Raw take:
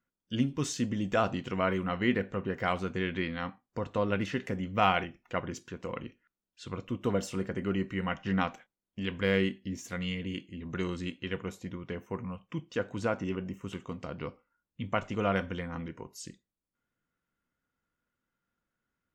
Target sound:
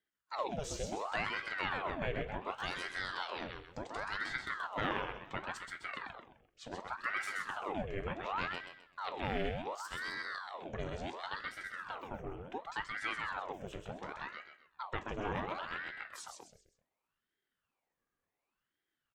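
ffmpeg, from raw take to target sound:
-filter_complex "[0:a]asettb=1/sr,asplit=3[a][b][c];[a]atrim=end=2.474[d];[b]atrim=start=2.47:end=4.18,asetpts=PTS-STARTPTS,afade=t=in:d=0.004:c=qsin,afade=t=out:st=1.706:d=0.004:c=qsin,equalizer=f=500:t=o:w=1:g=-5,equalizer=f=1k:t=o:w=1:g=-5,equalizer=f=4k:t=o:w=1:g=4,equalizer=f=8k:t=o:w=1:g=11[e];[c]atrim=start=4.176[f];[d][e]acrossfade=d=0.004:c1=hsin:c2=qsin[g];[g][f]acrossfade=d=0.004:c1=qsin:c2=hsin,acompressor=threshold=-37dB:ratio=1.5,flanger=delay=9.9:depth=2.5:regen=-78:speed=0.85:shape=sinusoidal,aecho=1:1:129|258|387|516:0.596|0.208|0.073|0.0255,aeval=exprs='val(0)*sin(2*PI*1000*n/s+1000*0.8/0.69*sin(2*PI*0.69*n/s))':c=same,volume=2.5dB"

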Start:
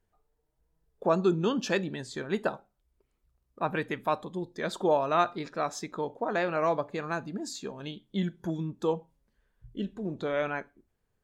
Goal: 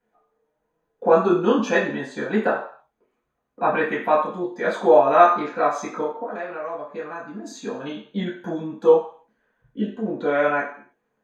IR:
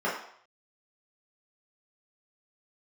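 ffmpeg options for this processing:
-filter_complex "[0:a]asettb=1/sr,asplit=3[a][b][c];[a]atrim=end=6.034[d];[b]atrim=start=6.03:end=7.46,asetpts=PTS-STARTPTS,afade=t=in:d=0.004:c=qsin,afade=t=out:st=1.426:d=0.004:c=qsin,acompressor=threshold=-39dB:ratio=6[e];[c]atrim=start=7.456[f];[d][e]acrossfade=d=0.004:c1=hsin:c2=qsin[g];[g][f]acrossfade=d=0.004:c1=qsin:c2=hsin[h];[1:a]atrim=start_sample=2205,asetrate=52920,aresample=44100[i];[h][i]afir=irnorm=-1:irlink=0,volume=-1.5dB"

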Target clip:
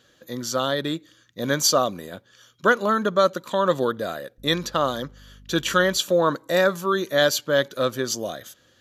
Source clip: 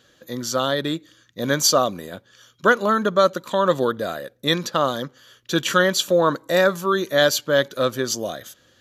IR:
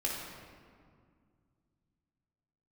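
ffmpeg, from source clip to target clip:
-filter_complex "[0:a]asettb=1/sr,asplit=3[a][b][c];[a]atrim=end=4.384[d];[b]atrim=start=4.38:end=5.98,asetpts=PTS-STARTPTS,afade=t=in:d=0.004:c=qsin,afade=t=out:st=1.596:d=0.004:c=qsin,aeval=exprs='val(0)+0.00562*(sin(2*PI*50*n/s)+sin(2*PI*2*50*n/s)/2+sin(2*PI*3*50*n/s)/3+sin(2*PI*4*50*n/s)/4+sin(2*PI*5*50*n/s)/5)':c=same[e];[c]atrim=start=5.976[f];[d][e]acrossfade=d=0.004:c1=hsin:c2=qsin[g];[g][f]acrossfade=d=0.004:c1=qsin:c2=hsin,volume=-2dB"

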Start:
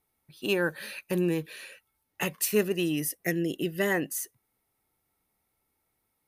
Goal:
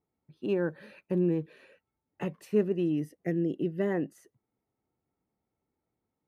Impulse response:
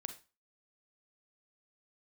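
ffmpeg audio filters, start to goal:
-af "bandpass=f=220:t=q:w=0.54:csg=0,volume=1dB"

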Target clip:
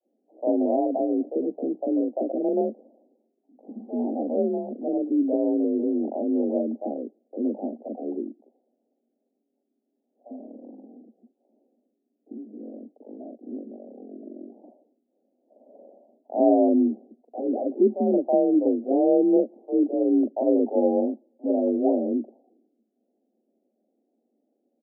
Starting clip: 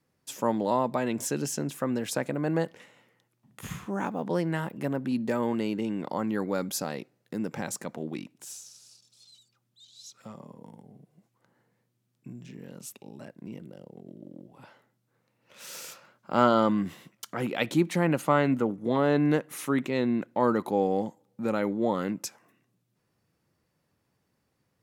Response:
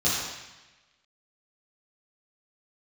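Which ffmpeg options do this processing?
-filter_complex "[0:a]afreqshift=43,asuperpass=centerf=410:order=20:qfactor=0.75,acrossover=split=550[a][b];[a]adelay=40[c];[c][b]amix=inputs=2:normalize=0,volume=7dB"

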